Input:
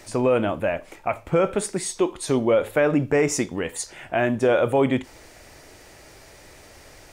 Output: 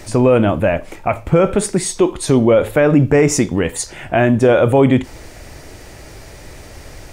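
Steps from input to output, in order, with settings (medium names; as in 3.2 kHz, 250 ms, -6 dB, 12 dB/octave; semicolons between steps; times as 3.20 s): bass shelf 240 Hz +9.5 dB; in parallel at +0.5 dB: peak limiter -13.5 dBFS, peak gain reduction 8 dB; on the sum: trim +1 dB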